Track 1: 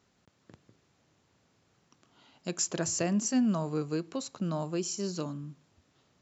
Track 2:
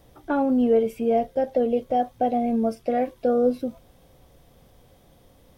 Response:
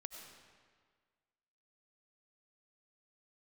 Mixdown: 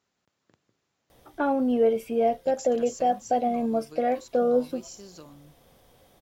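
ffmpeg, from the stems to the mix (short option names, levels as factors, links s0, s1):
-filter_complex "[0:a]acompressor=threshold=0.0251:ratio=6,volume=0.501[s0];[1:a]adelay=1100,volume=1.06[s1];[s0][s1]amix=inputs=2:normalize=0,lowshelf=f=270:g=-8.5"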